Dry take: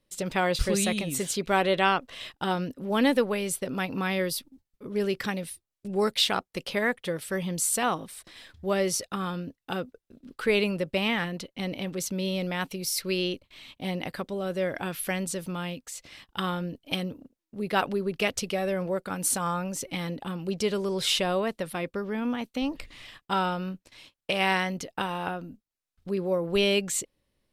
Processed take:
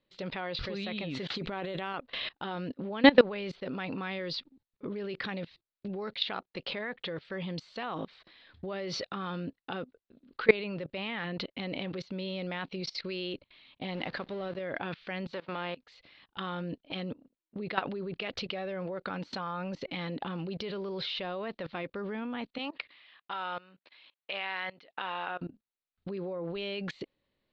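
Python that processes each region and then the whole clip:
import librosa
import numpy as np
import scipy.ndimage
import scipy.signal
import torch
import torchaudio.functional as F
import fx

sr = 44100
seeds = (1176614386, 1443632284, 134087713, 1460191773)

y = fx.chain(x, sr, fx.low_shelf(hz=400.0, db=6.0),
    fx.over_compress(threshold_db=-27.0, ratio=-0.5),
    fx.resample_bad(factor=4, down='none', up='zero_stuff'), at=(1.3, 1.94))
y = fx.chain(y, sr, fx.zero_step(step_db=-36.5),
    fx.transient(attack_db=10, sustain_db=-9), at=(13.88, 14.59))
y = fx.envelope_flatten(y, sr, power=0.6, at=(15.32, 15.75), fade=0.02)
y = fx.highpass(y, sr, hz=340.0, slope=12, at=(15.32, 15.75), fade=0.02)
y = fx.spacing_loss(y, sr, db_at_10k=28, at=(15.32, 15.75), fade=0.02)
y = fx.chain(y, sr, fx.highpass(hz=1200.0, slope=6),
    fx.peak_eq(hz=7000.0, db=-11.0, octaves=0.93), at=(22.58, 25.41))
y = scipy.signal.sosfilt(scipy.signal.ellip(4, 1.0, 60, 4300.0, 'lowpass', fs=sr, output='sos'), y)
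y = fx.low_shelf(y, sr, hz=97.0, db=-10.0)
y = fx.level_steps(y, sr, step_db=22)
y = y * 10.0 ** (8.0 / 20.0)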